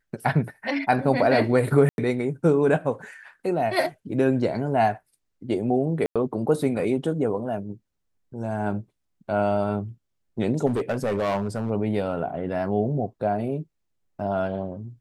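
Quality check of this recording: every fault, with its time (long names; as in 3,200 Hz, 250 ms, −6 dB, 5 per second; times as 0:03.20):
0:01.89–0:01.98: drop-out 91 ms
0:06.06–0:06.16: drop-out 96 ms
0:10.66–0:11.71: clipping −20.5 dBFS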